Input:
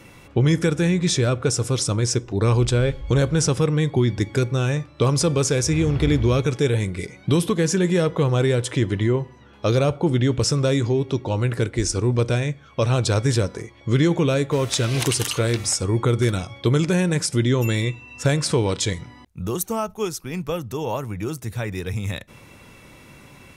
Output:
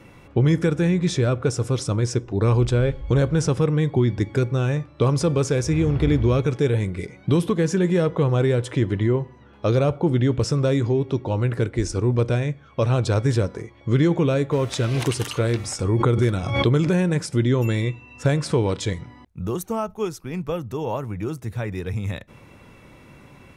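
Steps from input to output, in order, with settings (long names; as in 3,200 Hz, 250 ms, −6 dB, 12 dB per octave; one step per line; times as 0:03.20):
high-shelf EQ 2,900 Hz −10 dB
0:15.79–0:17.10: background raised ahead of every attack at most 50 dB per second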